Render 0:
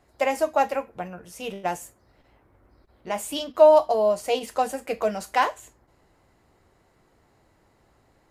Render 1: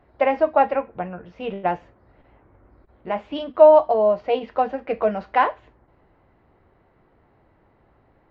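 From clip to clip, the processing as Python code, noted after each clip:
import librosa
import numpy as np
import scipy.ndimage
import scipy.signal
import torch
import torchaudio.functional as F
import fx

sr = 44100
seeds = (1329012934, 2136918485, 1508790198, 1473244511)

y = fx.rider(x, sr, range_db=3, speed_s=2.0)
y = scipy.ndimage.gaussian_filter1d(y, 3.1, mode='constant')
y = y * librosa.db_to_amplitude(2.5)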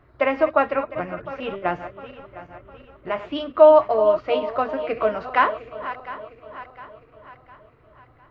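y = fx.reverse_delay_fb(x, sr, ms=353, feedback_pct=66, wet_db=-13)
y = fx.graphic_eq_31(y, sr, hz=(125, 200, 500, 800, 1250), db=(8, -11, -5, -10, 6))
y = y * librosa.db_to_amplitude(2.5)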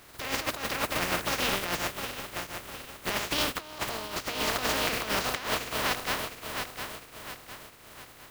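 y = fx.spec_flatten(x, sr, power=0.26)
y = fx.over_compress(y, sr, threshold_db=-29.0, ratio=-1.0)
y = y * librosa.db_to_amplitude(-3.0)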